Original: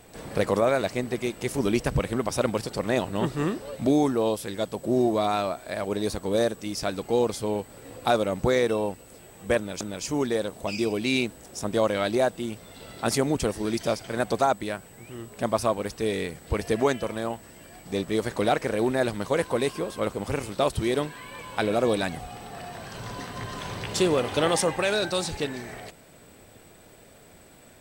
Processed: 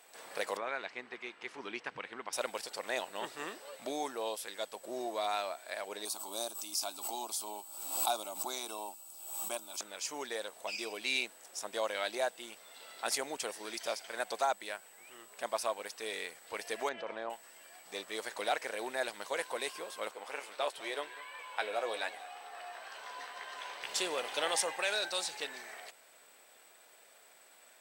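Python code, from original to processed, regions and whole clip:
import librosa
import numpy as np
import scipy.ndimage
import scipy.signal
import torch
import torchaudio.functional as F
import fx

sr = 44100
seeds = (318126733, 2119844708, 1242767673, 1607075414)

y = fx.chain(x, sr, fx.lowpass(hz=2700.0, slope=12),
    fx.peak_eq(hz=600.0, db=-9.5, octaves=0.68), at=(0.57, 2.33))
y = fx.chain(y, sr, fx.high_shelf(hz=8000.0, db=11.5),
    fx.fixed_phaser(hz=490.0, stages=6),
    fx.pre_swell(db_per_s=58.0), at=(6.05, 9.79))
y = fx.chain(y, sr, fx.spacing_loss(db_at_10k=33),
    fx.env_flatten(amount_pct=70), at=(16.89, 17.3))
y = fx.chain(y, sr, fx.bass_treble(bass_db=-14, treble_db=-8),
    fx.doubler(ms=14.0, db=-8.0),
    fx.echo_single(ms=199, db=-18.0), at=(20.11, 23.83))
y = scipy.signal.sosfilt(scipy.signal.butter(2, 800.0, 'highpass', fs=sr, output='sos'), y)
y = fx.dynamic_eq(y, sr, hz=1200.0, q=3.8, threshold_db=-47.0, ratio=4.0, max_db=-5)
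y = y * librosa.db_to_amplitude(-4.5)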